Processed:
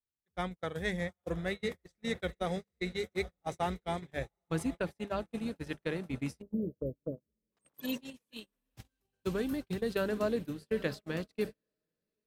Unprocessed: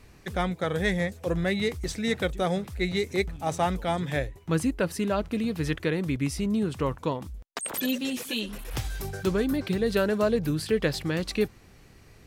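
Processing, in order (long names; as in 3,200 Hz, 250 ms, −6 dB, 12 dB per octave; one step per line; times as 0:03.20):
on a send: feedback delay with all-pass diffusion 822 ms, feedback 53%, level −13.5 dB
on the sum: time-frequency box erased 0:06.42–0:07.52, 650–12,000 Hz
mains-hum notches 50/100/150/200 Hz
noise gate −27 dBFS, range −42 dB
level −7.5 dB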